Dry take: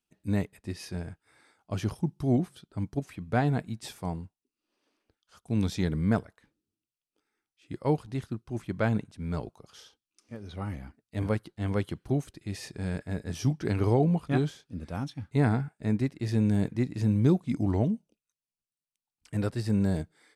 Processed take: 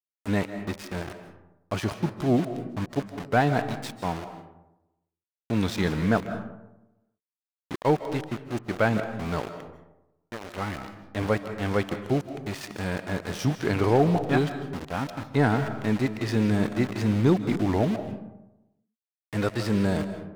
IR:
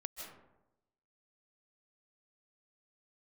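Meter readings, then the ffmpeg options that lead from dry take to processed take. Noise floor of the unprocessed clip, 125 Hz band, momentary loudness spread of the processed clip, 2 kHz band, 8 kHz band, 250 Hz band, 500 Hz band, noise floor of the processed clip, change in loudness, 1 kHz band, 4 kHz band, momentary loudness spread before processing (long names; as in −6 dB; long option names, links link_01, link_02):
below −85 dBFS, 0.0 dB, 13 LU, +9.0 dB, +4.0 dB, +2.5 dB, +6.0 dB, below −85 dBFS, +3.0 dB, +8.0 dB, +7.0 dB, 13 LU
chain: -filter_complex "[0:a]aeval=exprs='val(0)*gte(abs(val(0)),0.0126)':channel_layout=same,asplit=2[link_01][link_02];[link_02]highpass=frequency=720:poles=1,volume=11dB,asoftclip=type=tanh:threshold=-12.5dB[link_03];[link_01][link_03]amix=inputs=2:normalize=0,lowpass=frequency=3200:poles=1,volume=-6dB,asplit=2[link_04][link_05];[1:a]atrim=start_sample=2205[link_06];[link_05][link_06]afir=irnorm=-1:irlink=0,volume=0dB[link_07];[link_04][link_07]amix=inputs=2:normalize=0"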